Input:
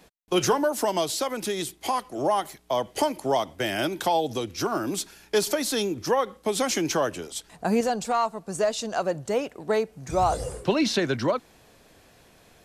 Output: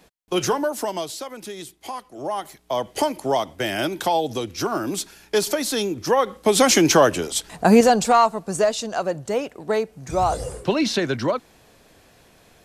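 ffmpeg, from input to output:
ffmpeg -i in.wav -af "volume=16.5dB,afade=type=out:start_time=0.65:duration=0.6:silence=0.473151,afade=type=in:start_time=2.17:duration=0.73:silence=0.375837,afade=type=in:start_time=6.03:duration=0.66:silence=0.421697,afade=type=out:start_time=7.96:duration=0.92:silence=0.398107" out.wav

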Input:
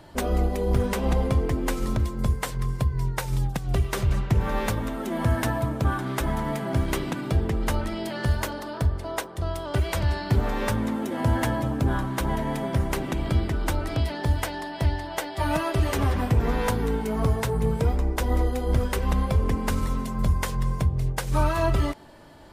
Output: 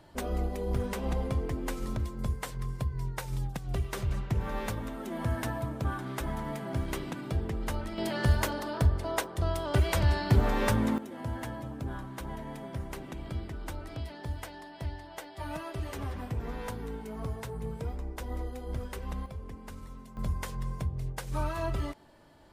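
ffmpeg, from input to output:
ffmpeg -i in.wav -af "asetnsamples=nb_out_samples=441:pad=0,asendcmd='7.98 volume volume -1dB;10.98 volume volume -13dB;19.26 volume volume -19dB;20.17 volume volume -9.5dB',volume=-8dB" out.wav

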